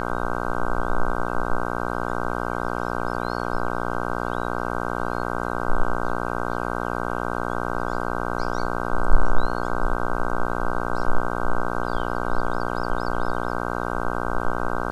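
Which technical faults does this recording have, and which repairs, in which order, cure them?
buzz 60 Hz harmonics 26 -27 dBFS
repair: de-hum 60 Hz, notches 26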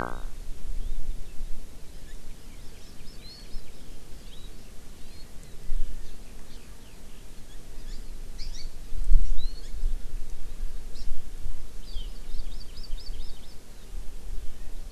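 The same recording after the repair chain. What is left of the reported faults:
none

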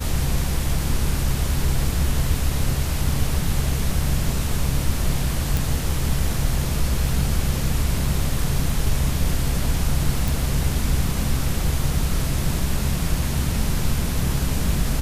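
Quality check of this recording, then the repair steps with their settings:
5.57 pop
10.28 pop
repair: de-click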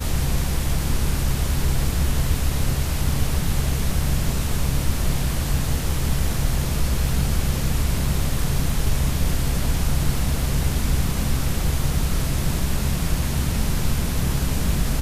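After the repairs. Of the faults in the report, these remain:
none

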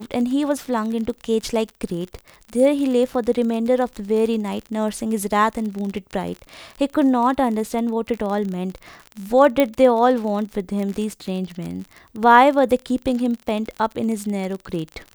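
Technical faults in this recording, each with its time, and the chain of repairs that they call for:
crackle 39/s -26 dBFS
9.6 pop -5 dBFS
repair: de-click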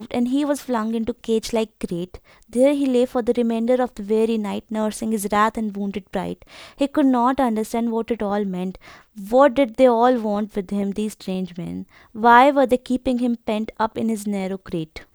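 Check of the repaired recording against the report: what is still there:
none

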